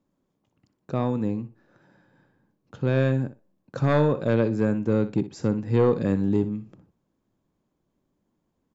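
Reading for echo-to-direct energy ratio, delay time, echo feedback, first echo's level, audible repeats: -13.5 dB, 61 ms, 16%, -13.5 dB, 2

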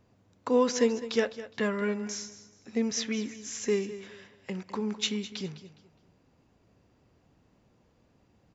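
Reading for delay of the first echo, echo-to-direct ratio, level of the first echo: 207 ms, -14.0 dB, -14.5 dB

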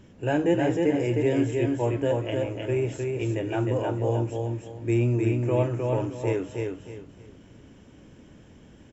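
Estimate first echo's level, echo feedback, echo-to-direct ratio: -3.5 dB, 28%, -3.0 dB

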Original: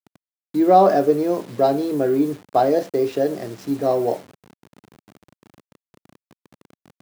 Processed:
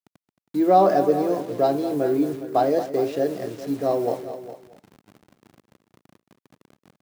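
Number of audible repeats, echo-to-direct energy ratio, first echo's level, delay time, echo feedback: 3, -10.0 dB, -12.5 dB, 222 ms, no regular repeats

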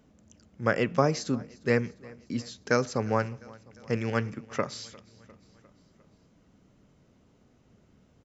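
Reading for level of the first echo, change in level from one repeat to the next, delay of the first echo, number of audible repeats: -23.0 dB, -4.5 dB, 352 ms, 3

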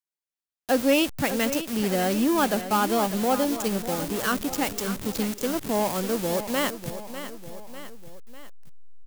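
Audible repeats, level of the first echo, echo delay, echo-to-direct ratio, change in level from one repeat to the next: 3, -11.5 dB, 598 ms, -10.0 dB, -5.5 dB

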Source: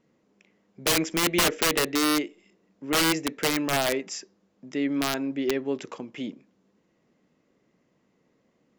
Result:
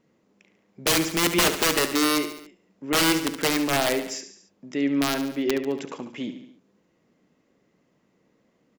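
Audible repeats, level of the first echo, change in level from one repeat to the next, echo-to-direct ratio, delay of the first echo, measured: 4, -10.5 dB, -5.0 dB, -9.0 dB, 71 ms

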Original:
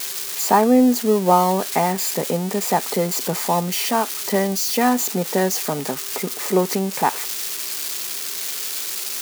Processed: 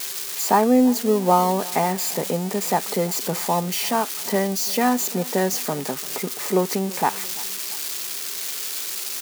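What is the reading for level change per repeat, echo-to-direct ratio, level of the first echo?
-6.5 dB, -20.5 dB, -21.5 dB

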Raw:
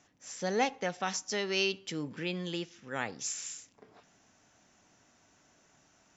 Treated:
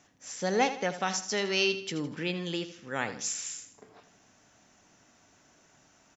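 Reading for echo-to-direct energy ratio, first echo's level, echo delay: -11.5 dB, -12.0 dB, 80 ms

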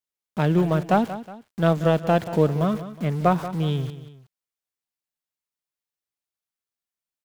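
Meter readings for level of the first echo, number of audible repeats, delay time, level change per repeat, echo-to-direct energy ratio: -13.5 dB, 2, 183 ms, -7.5 dB, -13.0 dB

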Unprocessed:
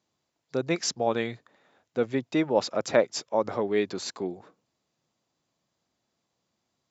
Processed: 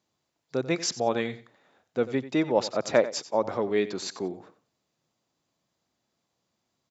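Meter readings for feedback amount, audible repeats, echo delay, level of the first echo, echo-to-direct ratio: 20%, 2, 91 ms, -15.0 dB, -15.0 dB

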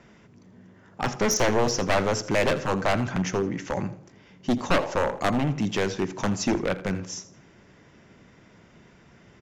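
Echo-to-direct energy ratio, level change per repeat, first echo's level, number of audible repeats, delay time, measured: -16.0 dB, -10.0 dB, -16.5 dB, 2, 82 ms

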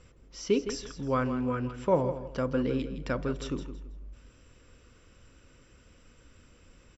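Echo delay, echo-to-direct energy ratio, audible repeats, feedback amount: 163 ms, -10.5 dB, 3, 27%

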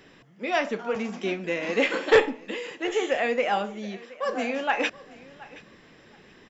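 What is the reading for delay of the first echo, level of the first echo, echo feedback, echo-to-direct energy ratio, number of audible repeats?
723 ms, -20.5 dB, 19%, -20.5 dB, 2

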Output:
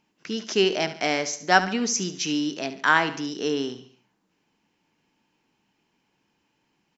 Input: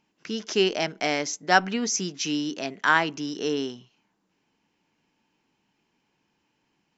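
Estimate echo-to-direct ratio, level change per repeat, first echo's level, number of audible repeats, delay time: -12.0 dB, -7.0 dB, -13.0 dB, 4, 71 ms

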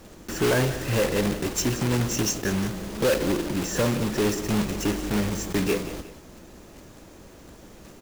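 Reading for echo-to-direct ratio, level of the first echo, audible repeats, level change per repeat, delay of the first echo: -13.5 dB, -14.0 dB, 2, -8.0 dB, 179 ms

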